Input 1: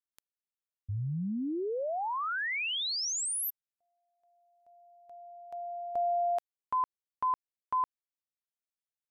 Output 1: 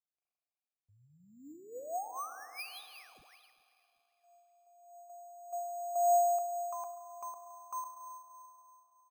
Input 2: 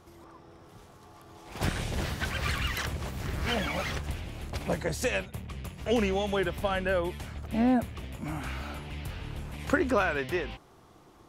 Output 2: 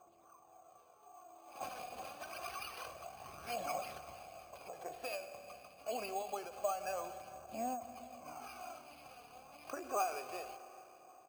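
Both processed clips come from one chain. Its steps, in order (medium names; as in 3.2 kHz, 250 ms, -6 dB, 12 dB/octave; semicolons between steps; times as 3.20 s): vowel filter a; phaser 0.27 Hz, delay 4.2 ms, feedback 49%; on a send: feedback delay 388 ms, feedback 44%, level -24 dB; on the sum: spring tank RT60 2.9 s, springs 33/40 ms, chirp 35 ms, DRR 10.5 dB; careless resampling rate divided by 6×, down none, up hold; endings held to a fixed fall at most 110 dB/s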